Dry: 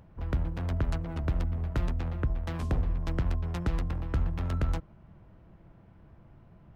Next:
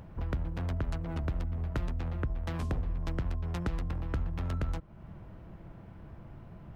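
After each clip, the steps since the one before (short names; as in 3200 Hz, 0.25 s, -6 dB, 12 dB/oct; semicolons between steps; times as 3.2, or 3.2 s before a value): compressor 2.5:1, threshold -41 dBFS, peak gain reduction 12 dB; gain +6.5 dB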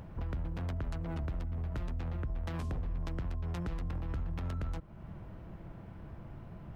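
limiter -30.5 dBFS, peak gain reduction 9 dB; gain +1 dB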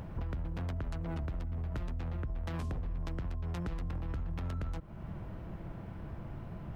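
compressor, threshold -37 dBFS, peak gain reduction 5.5 dB; gain +4 dB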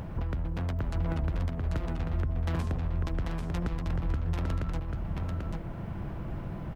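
echo 0.79 s -3.5 dB; gain +5 dB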